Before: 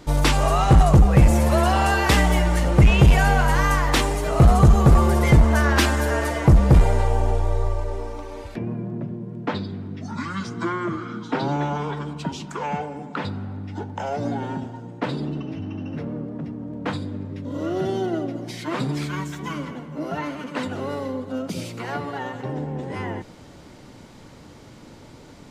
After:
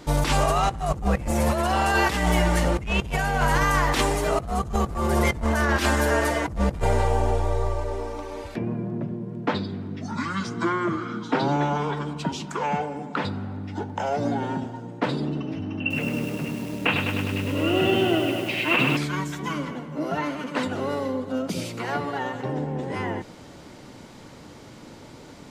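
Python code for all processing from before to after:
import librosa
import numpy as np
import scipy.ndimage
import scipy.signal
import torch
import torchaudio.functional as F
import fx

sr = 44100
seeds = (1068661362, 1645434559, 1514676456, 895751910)

y = fx.chain(x, sr, fx.lowpass_res(hz=2700.0, q=15.0),
    fx.echo_crushed(ms=102, feedback_pct=80, bits=7, wet_db=-5.5), at=(15.8, 18.97))
y = fx.low_shelf(y, sr, hz=110.0, db=-6.5)
y = fx.over_compress(y, sr, threshold_db=-21.0, ratio=-0.5)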